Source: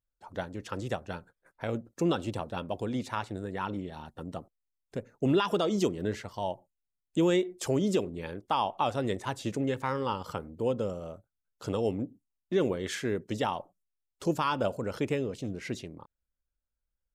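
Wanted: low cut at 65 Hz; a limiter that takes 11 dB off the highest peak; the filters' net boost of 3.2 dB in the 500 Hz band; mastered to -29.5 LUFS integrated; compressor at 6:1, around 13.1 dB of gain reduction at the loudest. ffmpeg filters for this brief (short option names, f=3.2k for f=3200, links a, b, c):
-af "highpass=65,equalizer=f=500:t=o:g=4,acompressor=threshold=-34dB:ratio=6,volume=11.5dB,alimiter=limit=-17dB:level=0:latency=1"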